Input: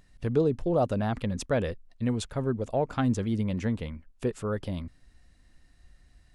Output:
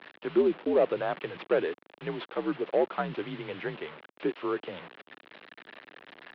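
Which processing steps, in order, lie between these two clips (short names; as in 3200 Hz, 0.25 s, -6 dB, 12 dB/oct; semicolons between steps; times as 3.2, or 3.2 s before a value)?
delta modulation 32 kbps, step -38 dBFS; mistuned SSB -78 Hz 380–3400 Hz; gain +3 dB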